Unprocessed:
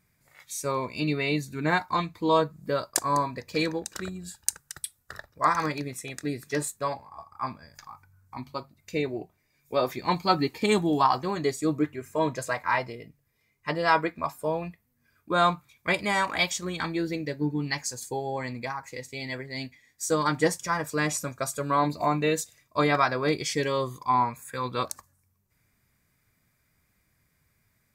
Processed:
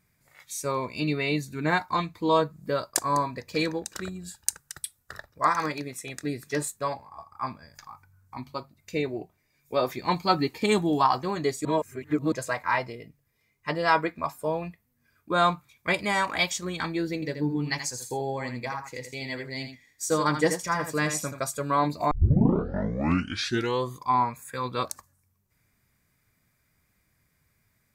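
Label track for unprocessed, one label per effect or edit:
5.470000	6.070000	low-shelf EQ 110 Hz −10.5 dB
11.650000	12.320000	reverse
17.140000	21.400000	single-tap delay 81 ms −8.5 dB
22.110000	22.110000	tape start 1.79 s

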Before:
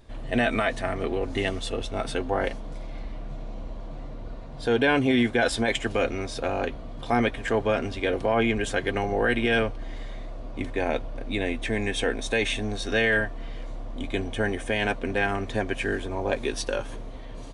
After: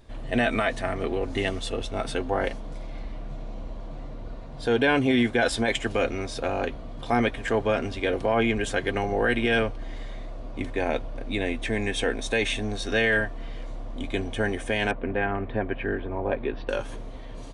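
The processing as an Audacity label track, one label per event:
14.910000	16.690000	Gaussian smoothing sigma 3.3 samples

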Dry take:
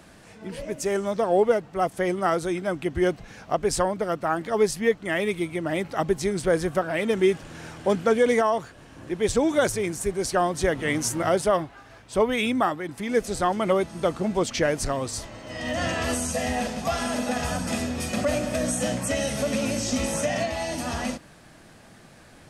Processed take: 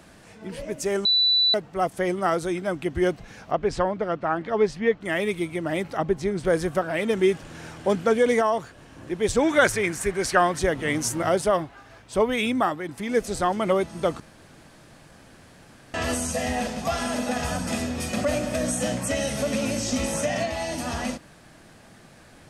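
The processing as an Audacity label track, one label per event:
1.050000	1.540000	beep over 3,970 Hz −16.5 dBFS
3.510000	5.010000	low-pass filter 3,500 Hz
5.970000	6.450000	low-pass filter 2,300 Hz 6 dB per octave
9.380000	10.590000	parametric band 1,800 Hz +10 dB 1.5 octaves
14.200000	15.940000	fill with room tone

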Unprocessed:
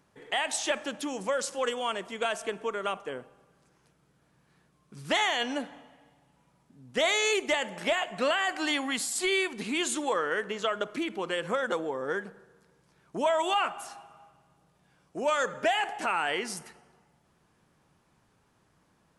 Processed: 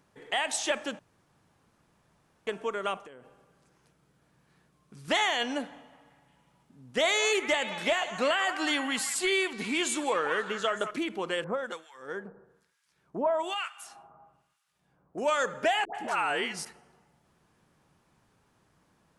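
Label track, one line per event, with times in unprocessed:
0.990000	2.470000	fill with room tone
2.980000	5.080000	downward compressor 8 to 1, threshold −45 dBFS
5.740000	10.910000	echo through a band-pass that steps 181 ms, band-pass from 1,100 Hz, each repeat 0.7 octaves, level −6.5 dB
11.440000	15.180000	two-band tremolo in antiphase 1.1 Hz, depth 100%, crossover 1,400 Hz
15.850000	16.650000	all-pass dispersion highs, late by 96 ms, half as late at 840 Hz

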